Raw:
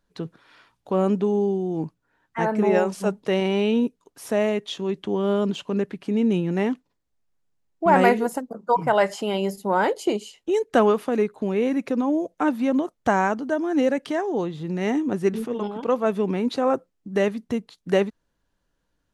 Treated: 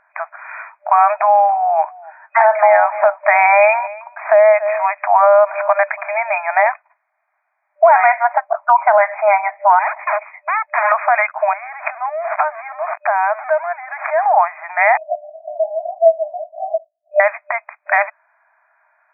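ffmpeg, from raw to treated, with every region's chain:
ffmpeg -i in.wav -filter_complex "[0:a]asettb=1/sr,asplit=3[link_01][link_02][link_03];[link_01]atrim=end=1.094[link_04];[link_02]atrim=start=1.09:end=6.67,asetpts=PTS-STARTPTS,afade=type=in:duration=0.004:curve=qsin,afade=type=out:start_time=5.576:duration=0.004:curve=qsin,lowshelf=frequency=470:gain=12,aecho=1:1:282:0.0794,atrim=end_sample=246078[link_05];[link_03]atrim=start=6.666[link_06];[link_04][link_05]acrossfade=duration=0.004:curve1=hsin:curve2=qsin[link_07];[link_07][link_06]acrossfade=duration=0.004:curve1=qsin:curve2=hsin,asettb=1/sr,asplit=3[link_08][link_09][link_10];[link_08]atrim=end=9.794[link_11];[link_09]atrim=start=9.79:end=10.92,asetpts=PTS-STARTPTS,afade=type=in:duration=0.004:curve=qsin,afade=type=out:start_time=1.126:duration=0.004:curve=qsin,lowshelf=frequency=320:gain=11.5,aecho=1:1:1:0.38,atrim=end_sample=49833,aeval=exprs='(tanh(35.5*val(0)+0.55)-tanh(0.55))/35.5':channel_layout=same[link_12];[link_10]atrim=start=10.916[link_13];[link_11][link_12]acrossfade=duration=0.004:curve1=hsin:curve2=qsin[link_14];[link_14][link_13]acrossfade=duration=0.004:curve1=qsin:curve2=hsin,asettb=1/sr,asplit=3[link_15][link_16][link_17];[link_15]atrim=end=11.534[link_18];[link_16]atrim=start=11.53:end=14.26,asetpts=PTS-STARTPTS,afade=type=in:duration=0.004:curve=qsin,afade=type=out:start_time=2.726:duration=0.004:curve=qsin,aeval=exprs='val(0)+0.5*0.0299*sgn(val(0))':channel_layout=same,highshelf=frequency=3500:gain=-11.5,acompressor=threshold=-34dB:ratio=8:attack=3.2:release=140:knee=1:detection=peak[link_19];[link_17]atrim=start=14.256[link_20];[link_18][link_19]acrossfade=duration=0.004:curve1=hsin:curve2=qsin[link_21];[link_21][link_20]acrossfade=duration=0.004:curve1=qsin:curve2=hsin,asettb=1/sr,asplit=3[link_22][link_23][link_24];[link_22]atrim=end=14.974[link_25];[link_23]atrim=start=14.97:end=17.2,asetpts=PTS-STARTPTS,afade=type=in:duration=0.004:curve=qsin,afade=type=out:start_time=2.226:duration=0.004:curve=qsin,acompressor=threshold=-21dB:ratio=6:attack=3.2:release=140:knee=1:detection=peak,asuperpass=centerf=530:order=12:qfactor=1.9,asplit=2[link_26][link_27];[link_27]adelay=17,volume=-5dB[link_28];[link_26][link_28]amix=inputs=2:normalize=0,atrim=end_sample=98343[link_29];[link_24]atrim=start=17.196[link_30];[link_25][link_29]acrossfade=duration=0.004:curve1=hsin:curve2=qsin[link_31];[link_31][link_30]acrossfade=duration=0.004:curve1=qsin:curve2=hsin,afftfilt=real='re*between(b*sr/4096,600,2500)':imag='im*between(b*sr/4096,600,2500)':win_size=4096:overlap=0.75,acompressor=threshold=-29dB:ratio=6,alimiter=level_in=25dB:limit=-1dB:release=50:level=0:latency=1,volume=-1dB" out.wav

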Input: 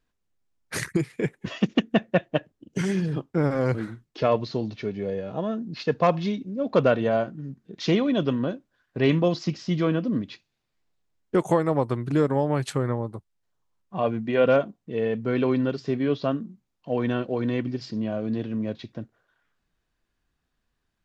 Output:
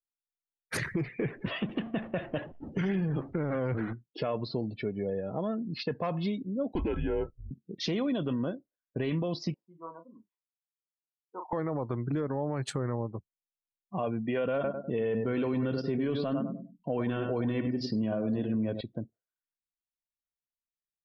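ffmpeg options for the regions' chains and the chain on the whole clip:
ffmpeg -i in.wav -filter_complex "[0:a]asettb=1/sr,asplit=3[link_01][link_02][link_03];[link_01]atrim=end=0.774[link_04];[link_02]atrim=start=0.77:end=3.93,asetpts=PTS-STARTPTS,afade=type=in:duration=0.004:curve=qsin,afade=type=out:start_time=3.156:duration=0.004:curve=qsin,aeval=exprs='val(0)+0.5*0.0237*sgn(val(0))':channel_layout=same,acrossover=split=4400[link_05][link_06];[link_06]acompressor=threshold=-55dB:ratio=4:attack=1:release=60[link_07];[link_05][link_07]amix=inputs=2:normalize=0,agate=range=-33dB:threshold=-34dB:ratio=3:release=100:detection=peak[link_08];[link_03]atrim=start=3.926[link_09];[link_04][link_08]acrossfade=duration=0.004:curve1=hsin:curve2=qsin[link_10];[link_10][link_09]acrossfade=duration=0.004:curve1=qsin:curve2=hsin,asettb=1/sr,asplit=3[link_11][link_12][link_13];[link_11]atrim=end=6.724[link_14];[link_12]atrim=start=6.72:end=7.51,asetpts=PTS-STARTPTS,afade=type=in:duration=0.004:curve=qsin,afade=type=out:start_time=0.786:duration=0.004:curve=qsin,agate=range=-33dB:threshold=-29dB:ratio=3:release=100:detection=peak,afreqshift=-190,asuperstop=centerf=1200:order=20:qfactor=5.6[link_15];[link_13]atrim=start=7.506[link_16];[link_14][link_15]acrossfade=duration=0.004:curve1=hsin:curve2=qsin[link_17];[link_17][link_16]acrossfade=duration=0.004:curve1=qsin:curve2=hsin,asettb=1/sr,asplit=3[link_18][link_19][link_20];[link_18]atrim=end=9.544[link_21];[link_19]atrim=start=9.54:end=11.53,asetpts=PTS-STARTPTS,afade=type=in:duration=0.004:curve=qsin,afade=type=out:start_time=1.986:duration=0.004:curve=qsin,bandpass=frequency=930:width_type=q:width=8.1,aemphasis=mode=reproduction:type=50kf,asplit=2[link_22][link_23];[link_23]adelay=36,volume=-5.5dB[link_24];[link_22][link_24]amix=inputs=2:normalize=0,atrim=end_sample=87759[link_25];[link_20]atrim=start=11.526[link_26];[link_21][link_25]acrossfade=duration=0.004:curve1=hsin:curve2=qsin[link_27];[link_27][link_26]acrossfade=duration=0.004:curve1=qsin:curve2=hsin,asettb=1/sr,asplit=3[link_28][link_29][link_30];[link_28]atrim=end=14.544[link_31];[link_29]atrim=start=14.54:end=18.81,asetpts=PTS-STARTPTS,afade=type=in:duration=0.004:curve=qsin,afade=type=out:start_time=4.266:duration=0.004:curve=qsin,acontrast=24,acrusher=bits=9:mode=log:mix=0:aa=0.000001,asplit=2[link_32][link_33];[link_33]adelay=100,lowpass=frequency=3100:poles=1,volume=-9dB,asplit=2[link_34][link_35];[link_35]adelay=100,lowpass=frequency=3100:poles=1,volume=0.32,asplit=2[link_36][link_37];[link_37]adelay=100,lowpass=frequency=3100:poles=1,volume=0.32,asplit=2[link_38][link_39];[link_39]adelay=100,lowpass=frequency=3100:poles=1,volume=0.32[link_40];[link_32][link_34][link_36][link_38][link_40]amix=inputs=5:normalize=0,atrim=end_sample=188307[link_41];[link_30]atrim=start=18.806[link_42];[link_31][link_41]acrossfade=duration=0.004:curve1=hsin:curve2=qsin[link_43];[link_43][link_42]acrossfade=duration=0.004:curve1=qsin:curve2=hsin,afftdn=noise_reduction=33:noise_floor=-43,alimiter=limit=-17.5dB:level=0:latency=1:release=15,acompressor=threshold=-31dB:ratio=2" out.wav

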